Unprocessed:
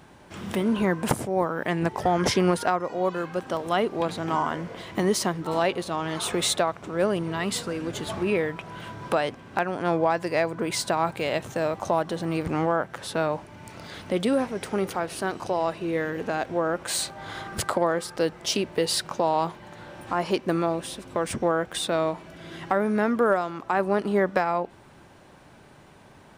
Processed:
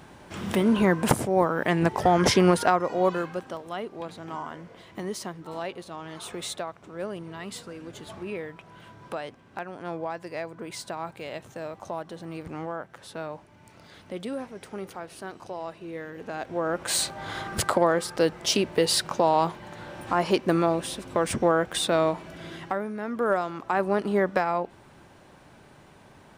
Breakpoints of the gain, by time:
3.12 s +2.5 dB
3.65 s -10 dB
16.12 s -10 dB
16.93 s +2 dB
22.45 s +2 dB
22.98 s -11 dB
23.36 s -1 dB

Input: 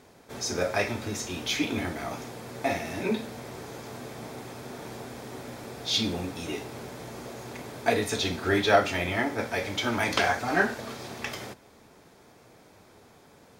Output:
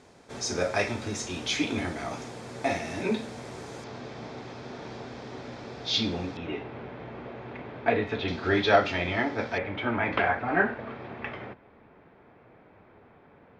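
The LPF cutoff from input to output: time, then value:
LPF 24 dB/oct
9000 Hz
from 3.84 s 5400 Hz
from 6.37 s 2900 Hz
from 8.28 s 4900 Hz
from 9.58 s 2500 Hz

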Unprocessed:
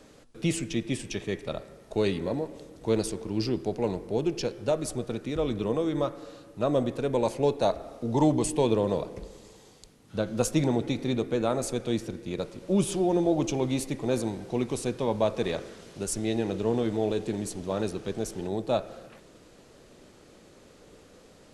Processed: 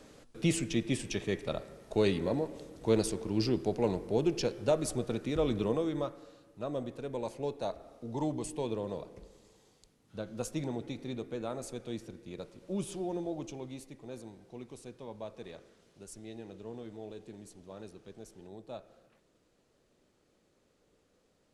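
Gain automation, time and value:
5.6 s -1.5 dB
6.37 s -11 dB
13.09 s -11 dB
13.91 s -17.5 dB

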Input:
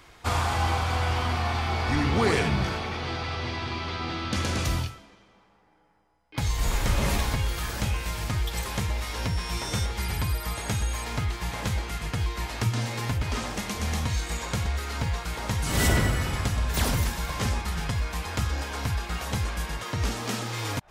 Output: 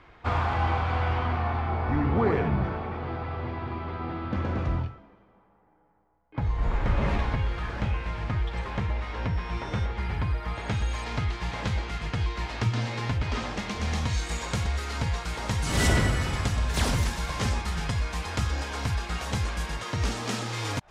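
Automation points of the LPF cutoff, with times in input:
1.06 s 2300 Hz
1.8 s 1300 Hz
6.46 s 1300 Hz
7.11 s 2200 Hz
10.43 s 2200 Hz
10.93 s 4600 Hz
13.74 s 4600 Hz
14.26 s 8800 Hz

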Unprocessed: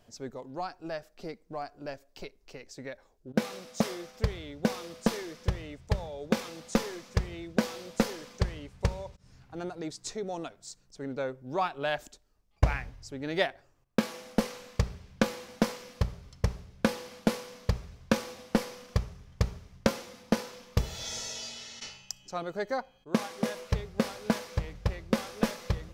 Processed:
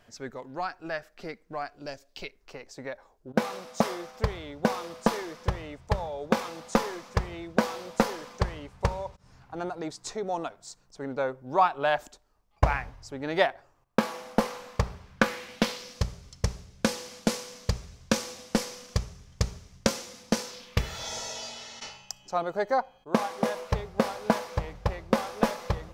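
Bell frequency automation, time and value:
bell +9.5 dB 1.5 oct
1.66 s 1700 Hz
1.92 s 7300 Hz
2.58 s 950 Hz
14.99 s 950 Hz
16.05 s 6800 Hz
20.45 s 6800 Hz
21.08 s 840 Hz

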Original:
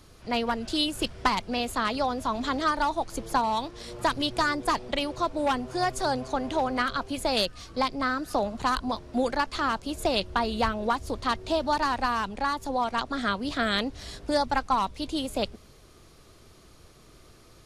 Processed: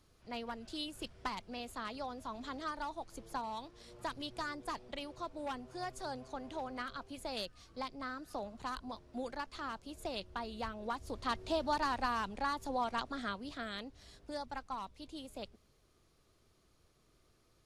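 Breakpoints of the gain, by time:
10.68 s -15 dB
11.38 s -8 dB
12.92 s -8 dB
13.74 s -17 dB

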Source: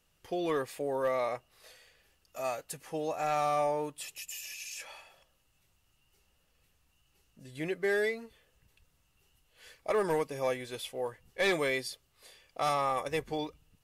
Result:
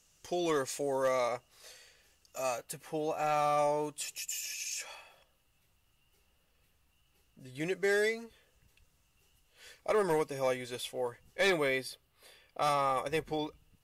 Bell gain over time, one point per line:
bell 6600 Hz 0.97 oct
+14 dB
from 1.28 s +7.5 dB
from 2.58 s -1.5 dB
from 3.58 s +6 dB
from 4.95 s -2.5 dB
from 7.6 s +9.5 dB
from 8.24 s +2.5 dB
from 11.5 s -7 dB
from 12.62 s -1 dB

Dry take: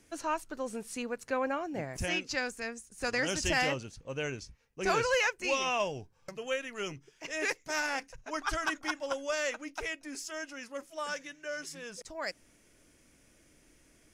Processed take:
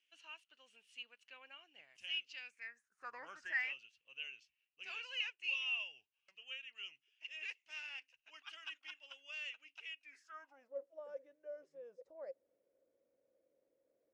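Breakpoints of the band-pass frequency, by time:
band-pass, Q 10
2.39 s 2900 Hz
3.21 s 960 Hz
3.76 s 2800 Hz
10.01 s 2800 Hz
10.72 s 530 Hz

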